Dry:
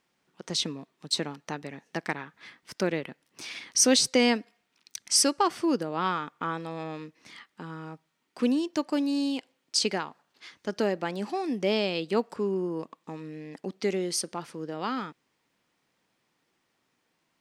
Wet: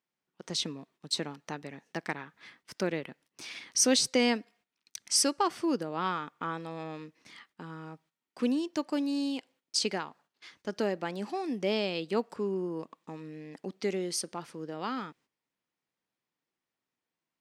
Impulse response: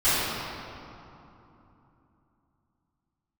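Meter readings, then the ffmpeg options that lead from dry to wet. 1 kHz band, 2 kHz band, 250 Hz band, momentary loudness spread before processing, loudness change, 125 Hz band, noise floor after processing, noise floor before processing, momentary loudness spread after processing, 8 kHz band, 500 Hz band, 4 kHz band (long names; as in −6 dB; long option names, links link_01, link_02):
−3.5 dB, −3.5 dB, −3.5 dB, 19 LU, −3.5 dB, −3.5 dB, below −85 dBFS, −76 dBFS, 19 LU, −3.5 dB, −3.5 dB, −3.5 dB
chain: -af "agate=range=-12dB:threshold=-58dB:ratio=16:detection=peak,volume=-3.5dB"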